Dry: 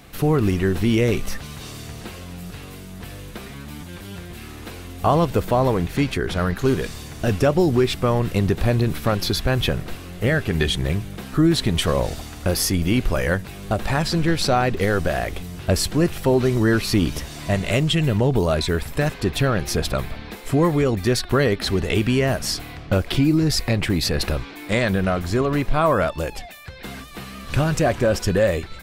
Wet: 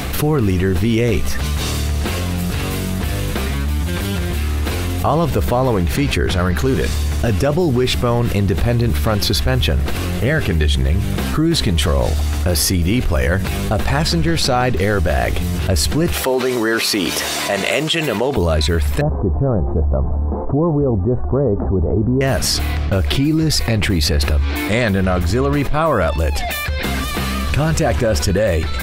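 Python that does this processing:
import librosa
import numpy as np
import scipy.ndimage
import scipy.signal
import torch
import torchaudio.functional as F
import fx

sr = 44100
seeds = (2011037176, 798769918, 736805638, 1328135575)

y = fx.highpass(x, sr, hz=410.0, slope=12, at=(16.13, 18.37))
y = fx.steep_lowpass(y, sr, hz=1000.0, slope=36, at=(19.01, 22.21))
y = fx.peak_eq(y, sr, hz=72.0, db=15.0, octaves=0.25)
y = fx.env_flatten(y, sr, amount_pct=70)
y = y * 10.0 ** (-1.0 / 20.0)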